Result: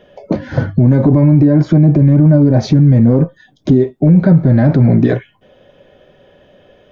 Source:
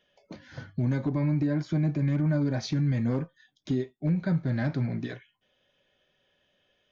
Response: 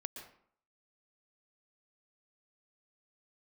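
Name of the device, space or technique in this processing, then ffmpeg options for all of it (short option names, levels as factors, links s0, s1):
mastering chain: -filter_complex "[0:a]asettb=1/sr,asplit=3[s0][s1][s2];[s0]atrim=end=1.784[s3];[s1]atrim=start=1.78:end=3.76,asetpts=PTS-STARTPTS,afade=t=in:d=0.004:c=qsin,afade=t=out:st=1.976:d=0.004:c=qsin,equalizer=f=1900:t=o:w=2.4:g=-3.5[s4];[s2]atrim=start=3.756[s5];[s3][s4]acrossfade=d=0.004:c1=hsin:c2=qsin[s6];[s6][s5]acrossfade=d=0.004:c1=qsin:c2=hsin,equalizer=f=530:t=o:w=1.2:g=4,acompressor=threshold=0.0224:ratio=1.5,tiltshelf=f=1500:g=8.5,alimiter=level_in=10:limit=0.891:release=50:level=0:latency=1,volume=0.891"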